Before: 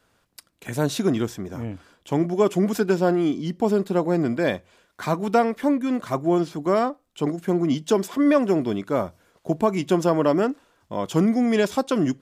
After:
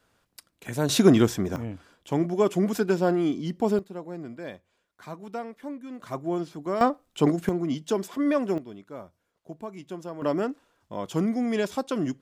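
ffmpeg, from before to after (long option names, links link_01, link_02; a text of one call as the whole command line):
ffmpeg -i in.wav -af "asetnsamples=nb_out_samples=441:pad=0,asendcmd='0.89 volume volume 5dB;1.56 volume volume -3dB;3.79 volume volume -15.5dB;6.01 volume volume -8dB;6.81 volume volume 3dB;7.49 volume volume -6dB;8.58 volume volume -17dB;10.22 volume volume -6dB',volume=-3dB" out.wav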